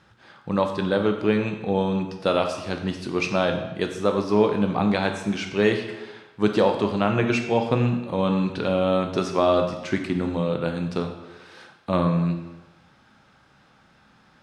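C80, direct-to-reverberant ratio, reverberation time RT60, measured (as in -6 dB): 9.0 dB, 4.5 dB, 1.1 s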